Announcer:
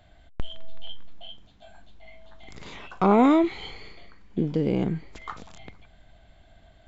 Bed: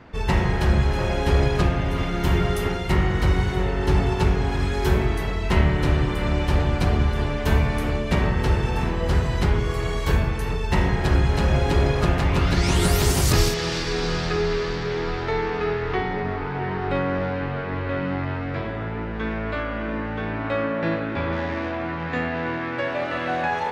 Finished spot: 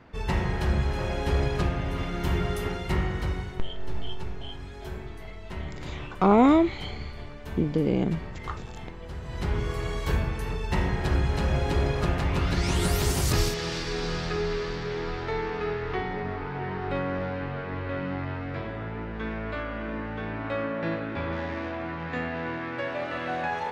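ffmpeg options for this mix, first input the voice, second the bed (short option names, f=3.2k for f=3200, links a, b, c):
-filter_complex "[0:a]adelay=3200,volume=0dB[a];[1:a]volume=6dB,afade=t=out:st=2.97:d=0.67:silence=0.266073,afade=t=in:st=9.2:d=0.41:silence=0.251189[b];[a][b]amix=inputs=2:normalize=0"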